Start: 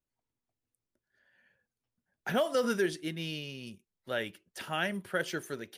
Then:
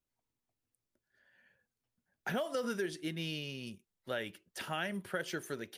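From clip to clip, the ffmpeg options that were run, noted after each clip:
-af "acompressor=threshold=-34dB:ratio=3"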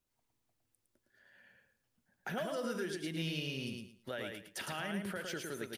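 -af "alimiter=level_in=10.5dB:limit=-24dB:level=0:latency=1:release=214,volume=-10.5dB,aecho=1:1:110|220|330:0.631|0.145|0.0334,volume=4dB"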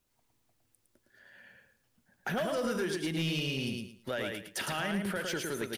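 -af "asoftclip=type=tanh:threshold=-32.5dB,volume=7.5dB"

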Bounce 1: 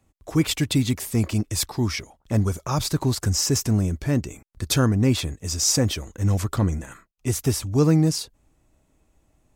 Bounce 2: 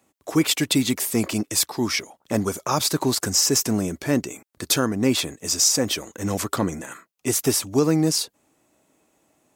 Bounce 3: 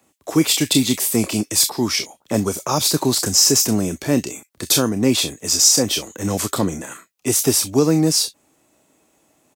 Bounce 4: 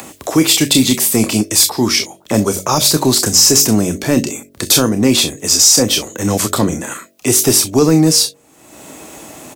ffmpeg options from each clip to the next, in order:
-af "highpass=250,highshelf=f=9.6k:g=4,alimiter=limit=-12.5dB:level=0:latency=1:release=323,volume=5dB"
-filter_complex "[0:a]acrossover=split=170|1300|2300[a][b][c][d];[c]acompressor=threshold=-47dB:ratio=6[e];[d]aecho=1:1:29|44|64:0.708|0.355|0.188[f];[a][b][e][f]amix=inputs=4:normalize=0,volume=3.5dB"
-af "apsyclip=9.5dB,acompressor=mode=upward:threshold=-14dB:ratio=2.5,bandreject=f=47.06:t=h:w=4,bandreject=f=94.12:t=h:w=4,bandreject=f=141.18:t=h:w=4,bandreject=f=188.24:t=h:w=4,bandreject=f=235.3:t=h:w=4,bandreject=f=282.36:t=h:w=4,bandreject=f=329.42:t=h:w=4,bandreject=f=376.48:t=h:w=4,bandreject=f=423.54:t=h:w=4,bandreject=f=470.6:t=h:w=4,bandreject=f=517.66:t=h:w=4,bandreject=f=564.72:t=h:w=4,bandreject=f=611.78:t=h:w=4,bandreject=f=658.84:t=h:w=4,volume=-3dB"

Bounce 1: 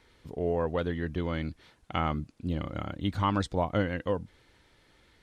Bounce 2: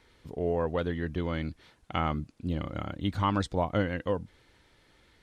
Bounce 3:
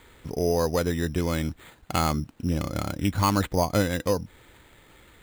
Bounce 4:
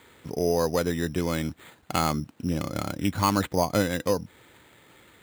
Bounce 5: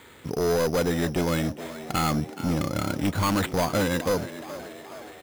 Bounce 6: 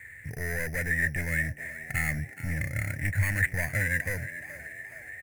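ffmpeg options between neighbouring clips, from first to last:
-af anull
-filter_complex "[0:a]asplit=2[a][b];[b]acompressor=threshold=-37dB:ratio=6,volume=-0.5dB[c];[a][c]amix=inputs=2:normalize=0,acrusher=samples=8:mix=1:aa=0.000001,volume=3dB"
-af "highpass=110"
-filter_complex "[0:a]volume=24.5dB,asoftclip=hard,volume=-24.5dB,asplit=7[a][b][c][d][e][f][g];[b]adelay=423,afreqshift=72,volume=-14dB[h];[c]adelay=846,afreqshift=144,volume=-18.4dB[i];[d]adelay=1269,afreqshift=216,volume=-22.9dB[j];[e]adelay=1692,afreqshift=288,volume=-27.3dB[k];[f]adelay=2115,afreqshift=360,volume=-31.7dB[l];[g]adelay=2538,afreqshift=432,volume=-36.2dB[m];[a][h][i][j][k][l][m]amix=inputs=7:normalize=0,volume=4.5dB"
-af "firequalizer=gain_entry='entry(120,0);entry(190,-16);entry(360,-22);entry(610,-14);entry(1200,-27);entry(1800,13);entry(3200,-24);entry(8700,-3);entry(14000,-6)':delay=0.05:min_phase=1,volume=2dB"

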